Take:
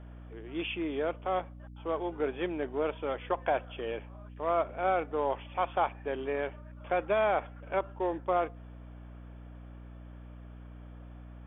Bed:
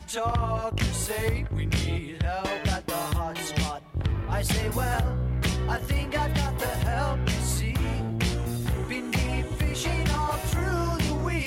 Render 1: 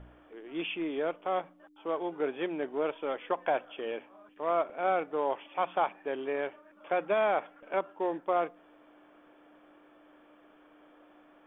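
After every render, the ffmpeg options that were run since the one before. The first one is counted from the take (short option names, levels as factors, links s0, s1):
-af "bandreject=f=60:t=h:w=4,bandreject=f=120:t=h:w=4,bandreject=f=180:t=h:w=4,bandreject=f=240:t=h:w=4"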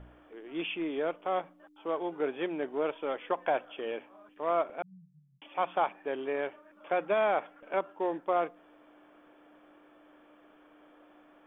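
-filter_complex "[0:a]asettb=1/sr,asplit=3[s0][s1][s2];[s0]atrim=end=4.824[s3];[s1]atrim=start=4.82:end=5.42,asetpts=PTS-STARTPTS,afade=t=in:d=0.004:c=qsin,afade=t=out:st=0.596:d=0.004:c=qsin,asuperpass=centerf=150:order=12:qfactor=2.1[s4];[s2]atrim=start=5.416[s5];[s3][s4]acrossfade=d=0.004:c1=hsin:c2=qsin[s6];[s6][s5]acrossfade=d=0.004:c1=qsin:c2=hsin"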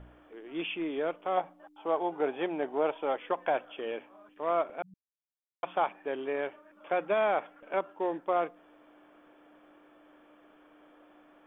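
-filter_complex "[0:a]asettb=1/sr,asplit=3[s0][s1][s2];[s0]atrim=end=1.374[s3];[s1]atrim=start=1.37:end=3.16,asetpts=PTS-STARTPTS,afade=t=in:d=0.004:c=qsin,afade=t=out:st=1.786:d=0.004:c=qsin,equalizer=f=780:w=2.2:g=8.5[s4];[s2]atrim=start=3.156[s5];[s3][s4]acrossfade=d=0.004:c1=hsin:c2=qsin[s6];[s6][s5]acrossfade=d=0.004:c1=qsin:c2=hsin,asplit=3[s7][s8][s9];[s7]atrim=end=4.94,asetpts=PTS-STARTPTS,afade=t=out:st=4.936:d=0.004:c=hsin[s10];[s8]atrim=start=4.94:end=5.63,asetpts=PTS-STARTPTS,volume=0[s11];[s9]atrim=start=5.63,asetpts=PTS-STARTPTS,afade=t=in:d=0.004:c=hsin[s12];[s10][s11][s12]concat=n=3:v=0:a=1"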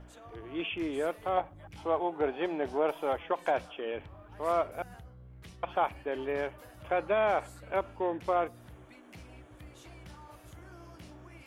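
-filter_complex "[1:a]volume=0.0596[s0];[0:a][s0]amix=inputs=2:normalize=0"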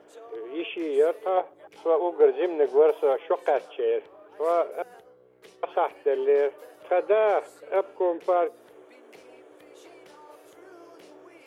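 -af "highpass=f=430:t=q:w=4.9"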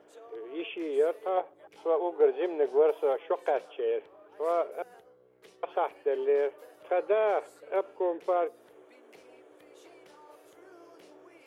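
-af "volume=0.596"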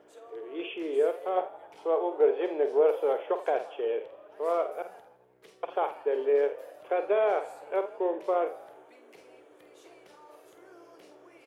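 -filter_complex "[0:a]asplit=2[s0][s1];[s1]adelay=49,volume=0.335[s2];[s0][s2]amix=inputs=2:normalize=0,asplit=7[s3][s4][s5][s6][s7][s8][s9];[s4]adelay=84,afreqshift=36,volume=0.133[s10];[s5]adelay=168,afreqshift=72,volume=0.0822[s11];[s6]adelay=252,afreqshift=108,volume=0.0513[s12];[s7]adelay=336,afreqshift=144,volume=0.0316[s13];[s8]adelay=420,afreqshift=180,volume=0.0197[s14];[s9]adelay=504,afreqshift=216,volume=0.0122[s15];[s3][s10][s11][s12][s13][s14][s15]amix=inputs=7:normalize=0"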